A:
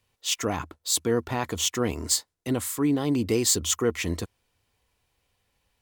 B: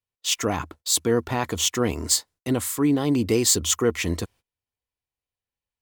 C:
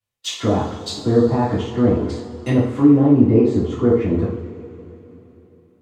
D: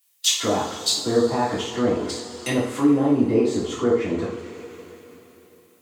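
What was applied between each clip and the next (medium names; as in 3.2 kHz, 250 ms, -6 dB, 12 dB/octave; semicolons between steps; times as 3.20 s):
gate -50 dBFS, range -24 dB; trim +3 dB
low-pass that closes with the level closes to 770 Hz, closed at -21.5 dBFS; two-slope reverb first 0.51 s, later 3.5 s, from -18 dB, DRR -8.5 dB
RIAA curve recording; tape noise reduction on one side only encoder only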